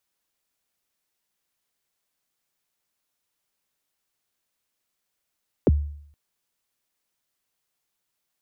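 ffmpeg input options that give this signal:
-f lavfi -i "aevalsrc='0.266*pow(10,-3*t/0.65)*sin(2*PI*(560*0.029/log(73/560)*(exp(log(73/560)*min(t,0.029)/0.029)-1)+73*max(t-0.029,0)))':d=0.47:s=44100"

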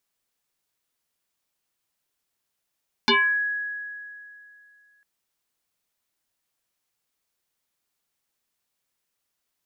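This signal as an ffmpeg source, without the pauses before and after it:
-f lavfi -i "aevalsrc='0.188*pow(10,-3*t/2.58)*sin(2*PI*1670*t+5.4*pow(10,-3*t/0.38)*sin(2*PI*0.38*1670*t))':d=1.95:s=44100"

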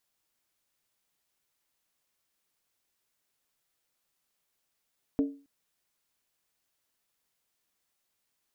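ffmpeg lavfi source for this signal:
-f lavfi -i "aevalsrc='0.1*pow(10,-3*t/0.36)*sin(2*PI*280*t)+0.0335*pow(10,-3*t/0.285)*sin(2*PI*446.3*t)+0.0112*pow(10,-3*t/0.246)*sin(2*PI*598.1*t)+0.00376*pow(10,-3*t/0.238)*sin(2*PI*642.9*t)+0.00126*pow(10,-3*t/0.221)*sin(2*PI*742.8*t)':d=0.27:s=44100"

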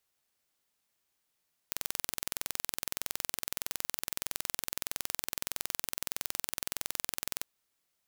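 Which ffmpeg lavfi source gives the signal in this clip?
-f lavfi -i "aevalsrc='0.531*eq(mod(n,2042),0)':d=5.71:s=44100"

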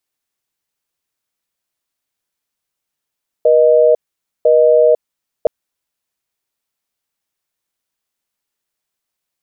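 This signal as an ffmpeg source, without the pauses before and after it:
-f lavfi -i "aevalsrc='0.335*(sin(2*PI*480*t)+sin(2*PI*620*t))*clip(min(mod(t,1),0.5-mod(t,1))/0.005,0,1)':d=2.02:s=44100"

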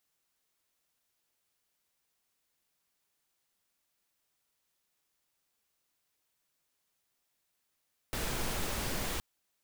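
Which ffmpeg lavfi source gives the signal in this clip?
-f lavfi -i "anoisesrc=c=pink:a=0.0966:d=1.07:r=44100:seed=1"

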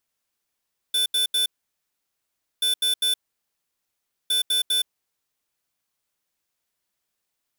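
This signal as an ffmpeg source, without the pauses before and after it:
-f lavfi -i "aevalsrc='0.0841*(2*lt(mod(3510*t,1),0.5)-1)*clip(min(mod(mod(t,1.68),0.2),0.12-mod(mod(t,1.68),0.2))/0.005,0,1)*lt(mod(t,1.68),0.6)':d=5.04:s=44100"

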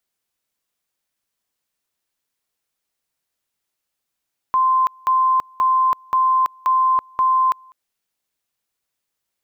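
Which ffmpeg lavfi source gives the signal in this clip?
-f lavfi -i "aevalsrc='pow(10,(-13-30*gte(mod(t,0.53),0.33))/20)*sin(2*PI*1040*t)':d=3.18:s=44100"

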